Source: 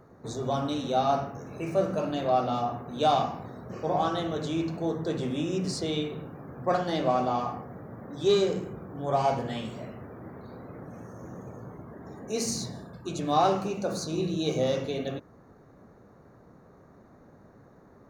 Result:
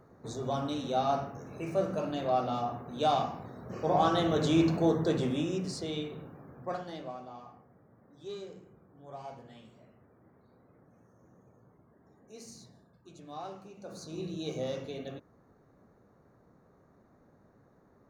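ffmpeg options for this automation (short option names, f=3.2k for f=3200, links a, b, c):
-af "volume=15.5dB,afade=t=in:st=3.56:d=1.09:silence=0.354813,afade=t=out:st=4.65:d=1.03:silence=0.281838,afade=t=out:st=6.24:d=0.96:silence=0.223872,afade=t=in:st=13.74:d=0.52:silence=0.298538"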